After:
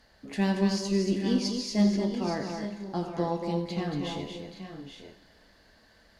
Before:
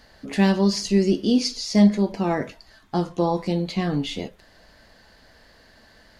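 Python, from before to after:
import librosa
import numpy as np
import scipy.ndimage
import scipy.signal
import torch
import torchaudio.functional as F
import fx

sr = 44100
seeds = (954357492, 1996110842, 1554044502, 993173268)

y = fx.echo_multitap(x, sr, ms=(84, 230, 828, 865), db=(-12.0, -6.0, -11.5, -12.0))
y = fx.cheby_harmonics(y, sr, harmonics=(4,), levels_db=(-29,), full_scale_db=-5.5)
y = fx.rev_schroeder(y, sr, rt60_s=2.4, comb_ms=31, drr_db=14.0)
y = y * 10.0 ** (-8.5 / 20.0)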